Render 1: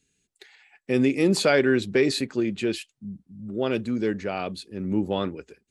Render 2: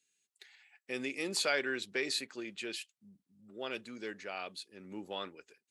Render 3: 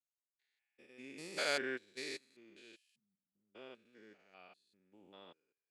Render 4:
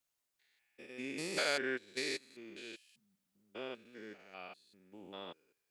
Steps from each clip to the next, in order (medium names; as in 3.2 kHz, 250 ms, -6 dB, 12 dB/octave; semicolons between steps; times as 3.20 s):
high-pass 1.5 kHz 6 dB/octave; trim -5 dB
spectrogram pixelated in time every 200 ms; upward expansion 2.5:1, over -51 dBFS; trim +1.5 dB
compression 2:1, threshold -47 dBFS, peak gain reduction 9.5 dB; trim +10 dB